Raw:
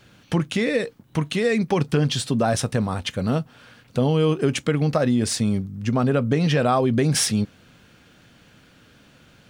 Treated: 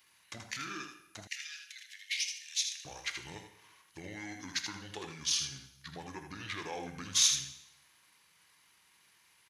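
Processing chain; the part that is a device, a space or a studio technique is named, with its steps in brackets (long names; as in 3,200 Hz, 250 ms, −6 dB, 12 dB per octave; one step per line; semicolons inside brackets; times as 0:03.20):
monster voice (pitch shifter −7 semitones; low-shelf EQ 160 Hz +6 dB; single-tap delay 80 ms −7 dB; convolution reverb RT60 0.85 s, pre-delay 22 ms, DRR 9 dB)
0:01.27–0:02.85: Butterworth high-pass 1,800 Hz 48 dB per octave
first difference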